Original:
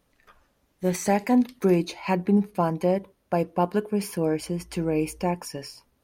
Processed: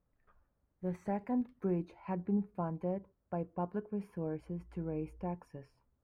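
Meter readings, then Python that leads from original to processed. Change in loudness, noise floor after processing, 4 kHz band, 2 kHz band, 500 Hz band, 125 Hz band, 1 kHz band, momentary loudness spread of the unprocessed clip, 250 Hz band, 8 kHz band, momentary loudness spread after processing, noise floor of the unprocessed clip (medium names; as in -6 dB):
-13.0 dB, -80 dBFS, under -30 dB, -20.0 dB, -14.5 dB, -10.5 dB, -14.5 dB, 8 LU, -12.5 dB, under -35 dB, 8 LU, -70 dBFS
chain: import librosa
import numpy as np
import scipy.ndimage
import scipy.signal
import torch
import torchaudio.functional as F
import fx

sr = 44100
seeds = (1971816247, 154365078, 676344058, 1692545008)

y = fx.curve_eq(x, sr, hz=(100.0, 270.0, 1400.0, 4900.0), db=(0, -8, -9, -30))
y = y * librosa.db_to_amplitude(-6.0)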